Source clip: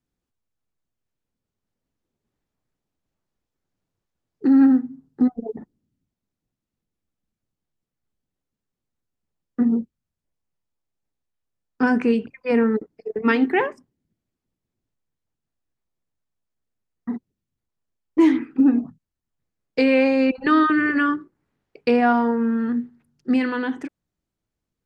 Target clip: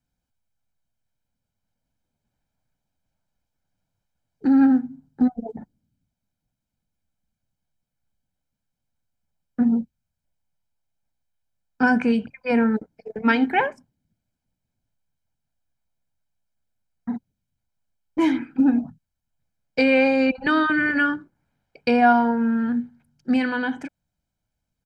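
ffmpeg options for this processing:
-af "aecho=1:1:1.3:0.64"

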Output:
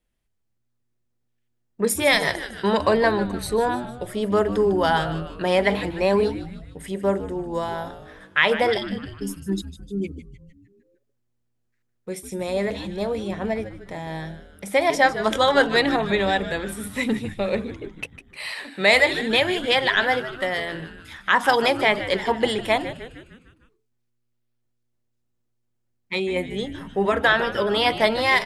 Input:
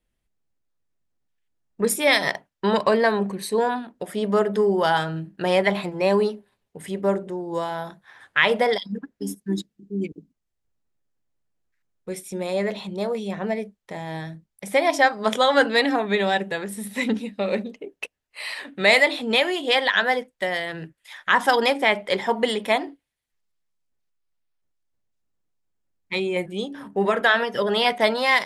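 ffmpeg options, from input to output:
-filter_complex "[0:a]asplit=7[a][b][c][d][e][f][g];[b]adelay=152,afreqshift=-120,volume=-12.5dB[h];[c]adelay=304,afreqshift=-240,volume=-17.7dB[i];[d]adelay=456,afreqshift=-360,volume=-22.9dB[j];[e]adelay=608,afreqshift=-480,volume=-28.1dB[k];[f]adelay=760,afreqshift=-600,volume=-33.3dB[l];[g]adelay=912,afreqshift=-720,volume=-38.5dB[m];[a][h][i][j][k][l][m]amix=inputs=7:normalize=0"

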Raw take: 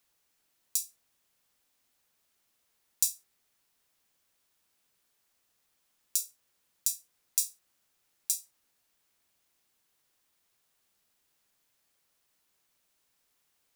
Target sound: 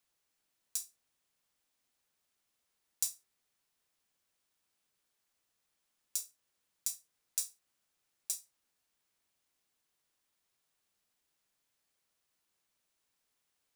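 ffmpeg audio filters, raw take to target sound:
-filter_complex "[0:a]equalizer=f=15k:t=o:w=0.22:g=-10,acrossover=split=860[a][b];[b]acrusher=bits=4:mode=log:mix=0:aa=0.000001[c];[a][c]amix=inputs=2:normalize=0,volume=-6dB"

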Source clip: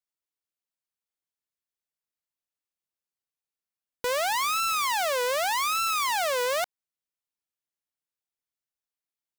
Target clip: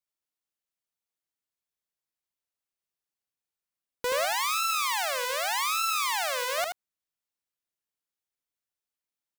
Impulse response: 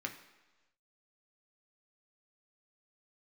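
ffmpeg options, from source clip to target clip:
-filter_complex "[0:a]asettb=1/sr,asplit=3[a][b][c];[a]atrim=end=4.254[d];[b]atrim=start=4.25:end=6.58,asetpts=PTS-STARTPTS,afade=t=in:d=0.004:c=qsin,afade=t=out:st=2.326:d=0.004:c=qsin,highpass=f=980:p=1[e];[c]atrim=start=6.576[f];[d][e]acrossfade=d=0.004:c1=hsin:c2=qsin[g];[g][f]acrossfade=d=0.004:c1=qsin:c2=hsin,acontrast=23,aecho=1:1:78:0.531,volume=-6dB"

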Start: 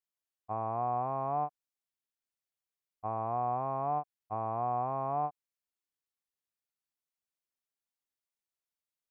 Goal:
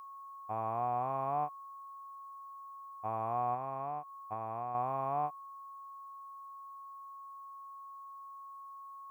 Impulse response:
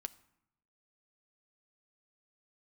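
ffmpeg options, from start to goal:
-filter_complex "[0:a]aeval=exprs='val(0)+0.00501*sin(2*PI*1100*n/s)':c=same,asettb=1/sr,asplit=3[a][b][c];[a]atrim=end=3.544[d];[b]atrim=start=3.54:end=4.75,asetpts=PTS-STARTPTS,afade=t=in:d=0.004:c=qsin,afade=t=out:st=1.206:d=0.004:c=qsin,acompressor=threshold=-34dB:ratio=5[e];[c]atrim=start=4.746[f];[d][e]acrossfade=d=0.004:c1=hsin:c2=qsin[g];[g][f]acrossfade=d=0.004:c1=qsin:c2=hsin,crystalizer=i=6.5:c=0,volume=-3.5dB"

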